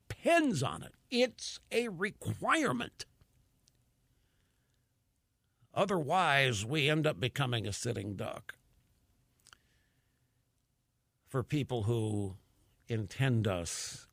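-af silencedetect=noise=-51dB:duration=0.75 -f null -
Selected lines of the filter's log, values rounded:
silence_start: 3.68
silence_end: 5.74 | silence_duration: 2.06
silence_start: 8.54
silence_end: 9.40 | silence_duration: 0.86
silence_start: 9.53
silence_end: 11.30 | silence_duration: 1.77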